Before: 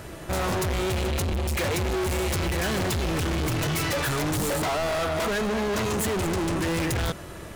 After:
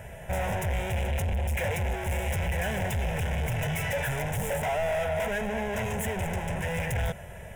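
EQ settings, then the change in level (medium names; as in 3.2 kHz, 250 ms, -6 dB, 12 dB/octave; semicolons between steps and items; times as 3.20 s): treble shelf 4.2 kHz -5 dB; static phaser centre 1.2 kHz, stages 6; 0.0 dB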